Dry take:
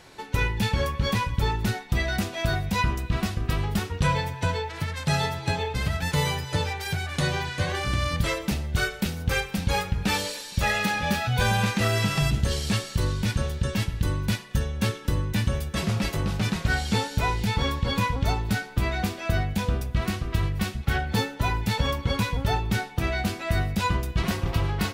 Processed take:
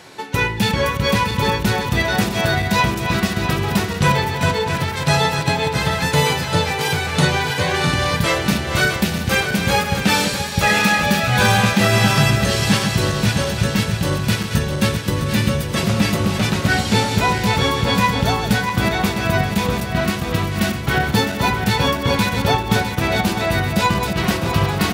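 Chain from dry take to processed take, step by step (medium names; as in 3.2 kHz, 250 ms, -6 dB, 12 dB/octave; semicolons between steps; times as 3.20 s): backward echo that repeats 328 ms, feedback 74%, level -7 dB; high-pass 120 Hz 12 dB/octave; trim +8.5 dB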